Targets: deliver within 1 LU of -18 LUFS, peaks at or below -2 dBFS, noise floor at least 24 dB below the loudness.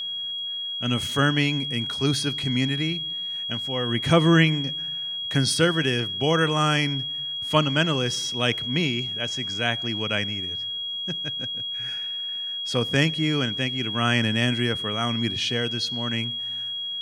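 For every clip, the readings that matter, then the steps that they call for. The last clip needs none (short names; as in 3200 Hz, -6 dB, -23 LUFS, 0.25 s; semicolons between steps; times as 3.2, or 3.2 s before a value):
steady tone 3300 Hz; tone level -28 dBFS; loudness -24.0 LUFS; peak -4.5 dBFS; loudness target -18.0 LUFS
-> notch 3300 Hz, Q 30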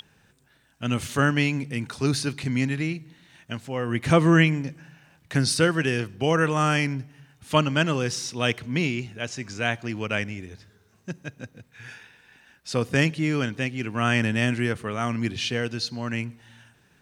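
steady tone none; loudness -25.0 LUFS; peak -5.0 dBFS; loudness target -18.0 LUFS
-> gain +7 dB; limiter -2 dBFS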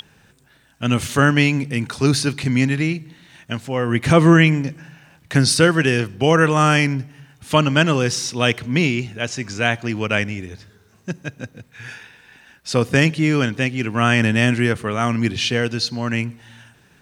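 loudness -18.5 LUFS; peak -2.0 dBFS; noise floor -55 dBFS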